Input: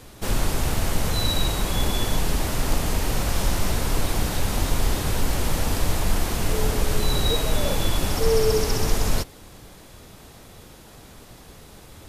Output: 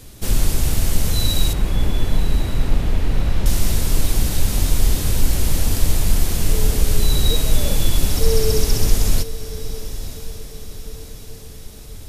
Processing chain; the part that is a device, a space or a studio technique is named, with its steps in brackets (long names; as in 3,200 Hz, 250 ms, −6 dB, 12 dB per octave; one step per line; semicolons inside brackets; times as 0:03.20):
smiley-face EQ (low-shelf EQ 81 Hz +6 dB; parametric band 1,000 Hz −7.5 dB 2.1 octaves; high-shelf EQ 6,000 Hz +5 dB)
0:01.53–0:03.46: low-pass filter 2,500 Hz 12 dB per octave
feedback delay with all-pass diffusion 1,066 ms, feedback 51%, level −13.5 dB
level +2 dB